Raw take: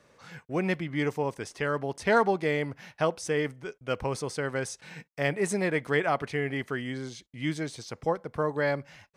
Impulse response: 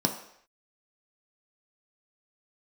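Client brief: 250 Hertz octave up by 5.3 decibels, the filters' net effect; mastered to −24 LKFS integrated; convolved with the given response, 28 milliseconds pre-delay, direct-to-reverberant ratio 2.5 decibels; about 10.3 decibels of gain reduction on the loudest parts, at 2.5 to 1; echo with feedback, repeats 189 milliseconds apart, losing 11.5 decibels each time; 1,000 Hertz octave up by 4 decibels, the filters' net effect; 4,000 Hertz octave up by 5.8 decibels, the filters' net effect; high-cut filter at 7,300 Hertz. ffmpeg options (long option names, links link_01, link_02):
-filter_complex "[0:a]lowpass=7300,equalizer=frequency=250:width_type=o:gain=7,equalizer=frequency=1000:width_type=o:gain=4.5,equalizer=frequency=4000:width_type=o:gain=8,acompressor=threshold=-30dB:ratio=2.5,aecho=1:1:189|378|567:0.266|0.0718|0.0194,asplit=2[link_01][link_02];[1:a]atrim=start_sample=2205,adelay=28[link_03];[link_02][link_03]afir=irnorm=-1:irlink=0,volume=-11.5dB[link_04];[link_01][link_04]amix=inputs=2:normalize=0,volume=3.5dB"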